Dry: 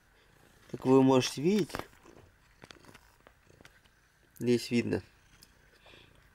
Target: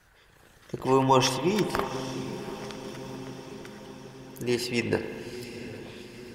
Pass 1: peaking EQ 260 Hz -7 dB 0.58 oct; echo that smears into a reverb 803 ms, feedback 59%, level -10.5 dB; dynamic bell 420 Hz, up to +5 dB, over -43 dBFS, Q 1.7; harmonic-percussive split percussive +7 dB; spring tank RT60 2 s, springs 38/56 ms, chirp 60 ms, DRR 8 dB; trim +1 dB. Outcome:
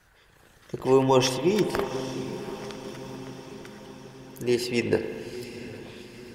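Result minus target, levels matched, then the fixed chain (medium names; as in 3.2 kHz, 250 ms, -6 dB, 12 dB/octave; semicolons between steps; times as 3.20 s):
1 kHz band -5.0 dB
peaking EQ 260 Hz -7 dB 0.58 oct; echo that smears into a reverb 803 ms, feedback 59%, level -10.5 dB; dynamic bell 1.1 kHz, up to +5 dB, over -43 dBFS, Q 1.7; harmonic-percussive split percussive +7 dB; spring tank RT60 2 s, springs 38/56 ms, chirp 60 ms, DRR 8 dB; trim +1 dB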